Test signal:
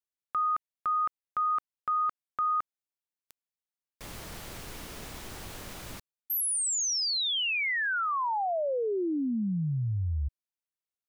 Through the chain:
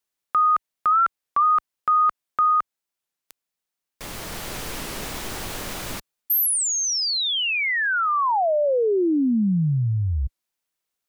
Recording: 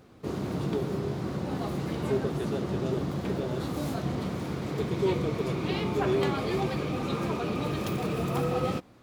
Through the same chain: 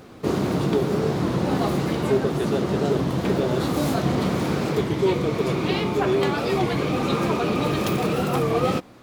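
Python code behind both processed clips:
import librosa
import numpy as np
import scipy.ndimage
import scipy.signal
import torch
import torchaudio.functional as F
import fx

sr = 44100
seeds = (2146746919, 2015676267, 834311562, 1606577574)

y = fx.peak_eq(x, sr, hz=72.0, db=-5.0, octaves=2.3)
y = fx.rider(y, sr, range_db=3, speed_s=0.5)
y = fx.record_warp(y, sr, rpm=33.33, depth_cents=160.0)
y = y * librosa.db_to_amplitude(8.5)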